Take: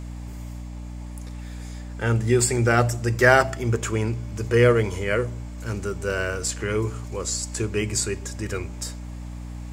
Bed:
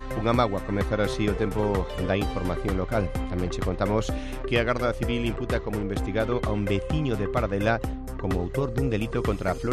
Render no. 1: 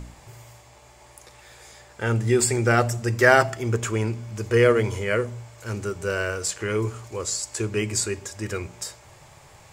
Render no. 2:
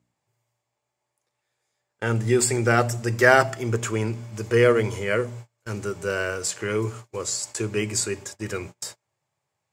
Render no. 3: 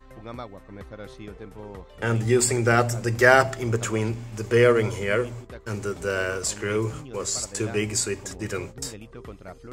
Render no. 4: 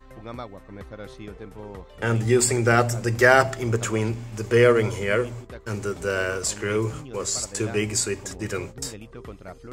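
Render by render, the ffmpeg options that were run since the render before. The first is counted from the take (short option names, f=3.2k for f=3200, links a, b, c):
-af "bandreject=f=60:t=h:w=4,bandreject=f=120:t=h:w=4,bandreject=f=180:t=h:w=4,bandreject=f=240:t=h:w=4,bandreject=f=300:t=h:w=4"
-af "highpass=f=100:w=0.5412,highpass=f=100:w=1.3066,agate=range=-30dB:threshold=-37dB:ratio=16:detection=peak"
-filter_complex "[1:a]volume=-15dB[a];[0:a][a]amix=inputs=2:normalize=0"
-af "volume=1dB,alimiter=limit=-3dB:level=0:latency=1"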